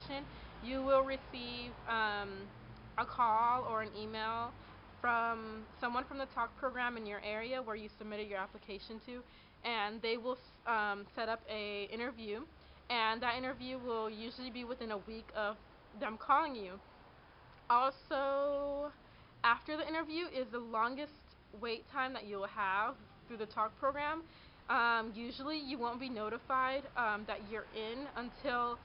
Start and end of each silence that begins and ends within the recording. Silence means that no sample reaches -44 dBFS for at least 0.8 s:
16.77–17.7

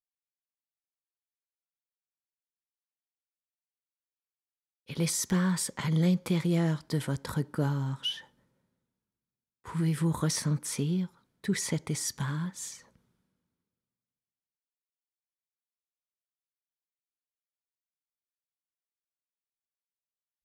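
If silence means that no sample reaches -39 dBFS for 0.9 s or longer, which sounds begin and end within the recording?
4.89–8.19
9.65–12.75

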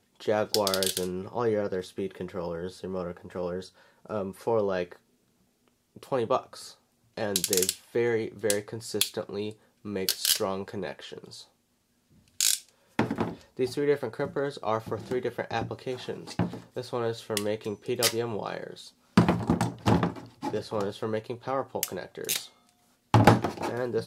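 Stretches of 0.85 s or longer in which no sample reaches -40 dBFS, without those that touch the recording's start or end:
4.96–5.97
11.42–12.4

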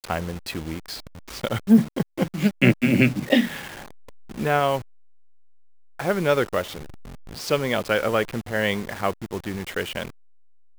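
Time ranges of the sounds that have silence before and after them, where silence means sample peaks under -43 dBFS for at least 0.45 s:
5.99–10.1

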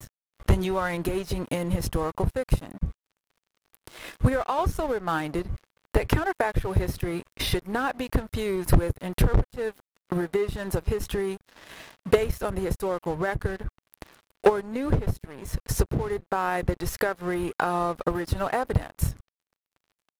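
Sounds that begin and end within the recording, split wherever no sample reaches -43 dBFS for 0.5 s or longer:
3.74–19.2

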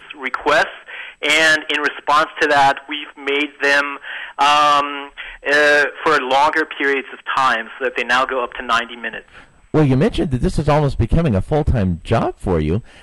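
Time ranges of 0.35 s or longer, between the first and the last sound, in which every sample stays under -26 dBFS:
9.19–9.74

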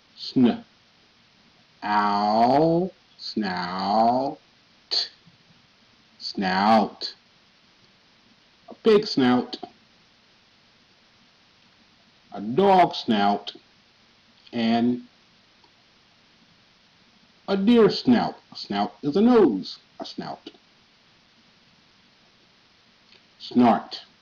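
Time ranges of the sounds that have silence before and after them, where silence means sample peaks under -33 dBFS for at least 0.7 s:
1.83–5.08
6.22–7.11
8.71–9.65
12.34–13.5
14.53–14.99
17.48–20.48

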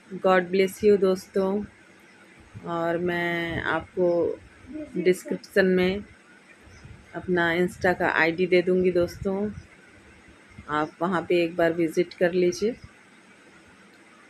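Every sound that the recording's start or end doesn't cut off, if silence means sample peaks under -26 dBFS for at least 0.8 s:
2.66–5.98
7.15–9.48
10.69–12.71

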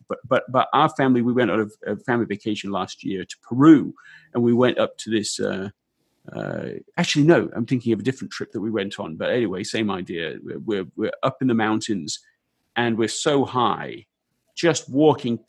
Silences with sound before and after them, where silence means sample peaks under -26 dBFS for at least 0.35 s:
3.9–4.35
5.68–6.28
12.16–12.76
13.94–14.58

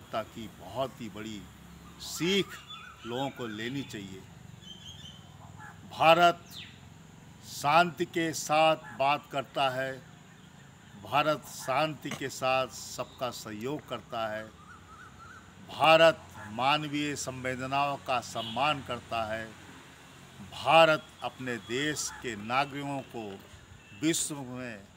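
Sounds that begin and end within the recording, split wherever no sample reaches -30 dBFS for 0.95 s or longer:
5.99–6.31
7.58–9.93
11.13–14.4
15.74–19.43

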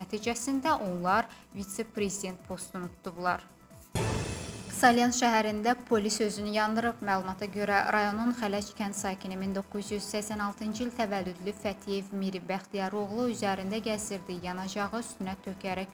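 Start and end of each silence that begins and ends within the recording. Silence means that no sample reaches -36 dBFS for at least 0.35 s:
3.39–3.95

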